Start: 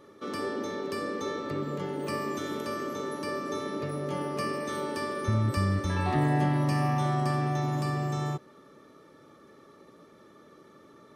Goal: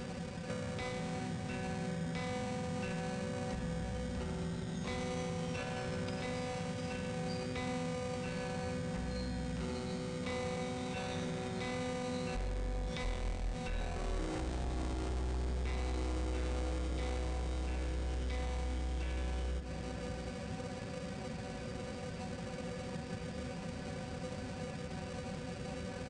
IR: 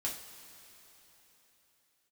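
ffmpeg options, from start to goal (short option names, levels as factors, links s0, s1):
-filter_complex "[0:a]asplit=2[s0][s1];[s1]acrusher=samples=11:mix=1:aa=0.000001,volume=0.473[s2];[s0][s2]amix=inputs=2:normalize=0,asoftclip=type=tanh:threshold=0.0596,alimiter=level_in=3.55:limit=0.0631:level=0:latency=1:release=37,volume=0.282,highshelf=f=3100:g=8.5,asetrate=18846,aresample=44100,acompressor=threshold=0.00447:ratio=6,equalizer=f=130:w=4.1:g=-7,asplit=2[s3][s4];[s4]adelay=699.7,volume=0.398,highshelf=f=4000:g=-15.7[s5];[s3][s5]amix=inputs=2:normalize=0,volume=3.35"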